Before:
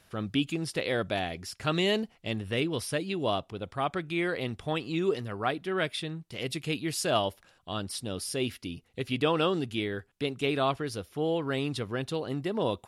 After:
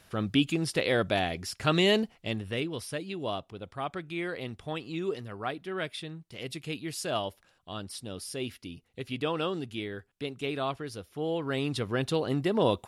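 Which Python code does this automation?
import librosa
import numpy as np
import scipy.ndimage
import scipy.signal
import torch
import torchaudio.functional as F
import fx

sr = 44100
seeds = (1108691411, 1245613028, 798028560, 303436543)

y = fx.gain(x, sr, db=fx.line((2.03, 3.0), (2.74, -4.5), (11.05, -4.5), (12.07, 4.0)))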